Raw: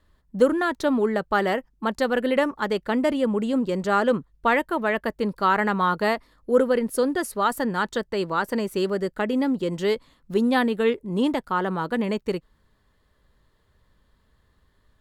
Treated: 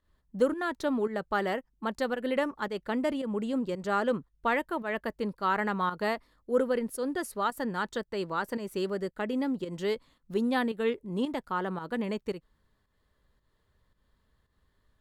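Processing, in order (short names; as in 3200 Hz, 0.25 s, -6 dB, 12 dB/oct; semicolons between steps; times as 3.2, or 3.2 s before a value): pump 112 bpm, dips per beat 1, -10 dB, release 0.171 s; gain -7 dB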